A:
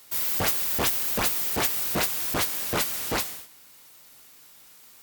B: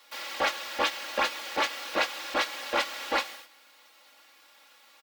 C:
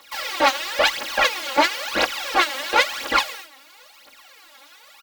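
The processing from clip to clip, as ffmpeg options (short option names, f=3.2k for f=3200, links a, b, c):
-filter_complex "[0:a]acrossover=split=7400[a][b];[b]acompressor=threshold=-33dB:ratio=4:attack=1:release=60[c];[a][c]amix=inputs=2:normalize=0,acrossover=split=380 4600:gain=0.0794 1 0.141[d][e][f];[d][e][f]amix=inputs=3:normalize=0,aecho=1:1:3.6:0.98"
-af "aphaser=in_gain=1:out_gain=1:delay=3.9:decay=0.75:speed=0.98:type=triangular,volume=5.5dB"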